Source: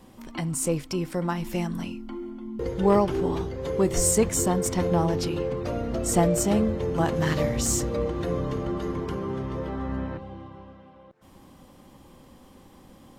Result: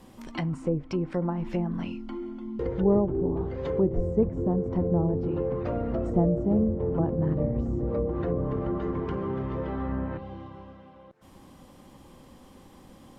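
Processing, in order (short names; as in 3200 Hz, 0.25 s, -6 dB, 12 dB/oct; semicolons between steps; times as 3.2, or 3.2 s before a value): treble ducked by the level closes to 490 Hz, closed at -21.5 dBFS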